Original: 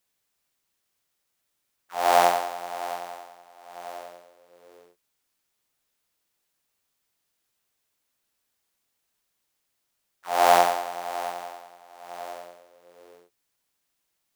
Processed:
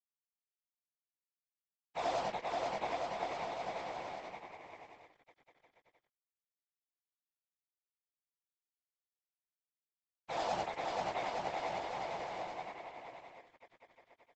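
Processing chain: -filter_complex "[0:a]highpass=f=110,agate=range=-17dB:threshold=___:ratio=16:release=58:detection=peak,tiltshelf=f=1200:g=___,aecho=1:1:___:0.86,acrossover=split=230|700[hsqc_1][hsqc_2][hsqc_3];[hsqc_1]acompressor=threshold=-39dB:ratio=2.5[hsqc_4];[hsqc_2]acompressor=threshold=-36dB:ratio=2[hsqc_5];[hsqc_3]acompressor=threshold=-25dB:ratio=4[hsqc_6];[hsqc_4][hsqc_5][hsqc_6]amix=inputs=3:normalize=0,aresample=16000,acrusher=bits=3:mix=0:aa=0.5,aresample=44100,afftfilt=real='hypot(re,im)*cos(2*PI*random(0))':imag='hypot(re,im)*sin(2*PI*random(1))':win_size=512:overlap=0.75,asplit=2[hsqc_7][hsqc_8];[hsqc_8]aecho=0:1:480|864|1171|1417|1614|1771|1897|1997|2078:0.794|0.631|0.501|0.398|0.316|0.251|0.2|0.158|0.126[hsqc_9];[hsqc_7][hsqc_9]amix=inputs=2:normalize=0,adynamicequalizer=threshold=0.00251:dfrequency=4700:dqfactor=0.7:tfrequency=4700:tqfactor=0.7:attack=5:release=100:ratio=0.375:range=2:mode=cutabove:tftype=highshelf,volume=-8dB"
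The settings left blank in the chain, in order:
-45dB, 7.5, 5.9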